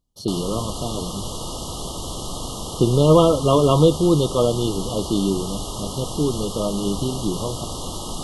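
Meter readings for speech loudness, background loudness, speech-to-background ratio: -20.5 LUFS, -30.0 LUFS, 9.5 dB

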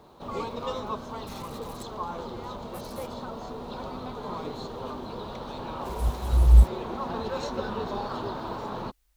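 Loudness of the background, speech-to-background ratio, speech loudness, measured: -35.5 LUFS, 13.0 dB, -22.5 LUFS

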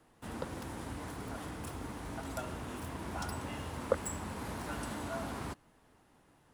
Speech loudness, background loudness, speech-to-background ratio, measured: -40.0 LUFS, -41.5 LUFS, 1.5 dB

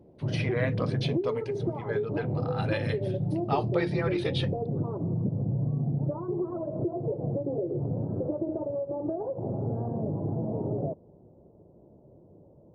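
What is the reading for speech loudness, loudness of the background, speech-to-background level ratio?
-34.5 LUFS, -31.0 LUFS, -3.5 dB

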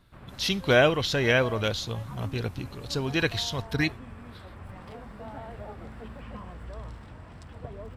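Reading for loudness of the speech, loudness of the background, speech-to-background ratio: -26.5 LUFS, -43.5 LUFS, 17.0 dB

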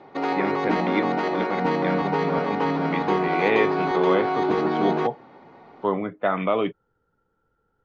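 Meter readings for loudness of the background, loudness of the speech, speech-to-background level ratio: -24.0 LUFS, -27.5 LUFS, -3.5 dB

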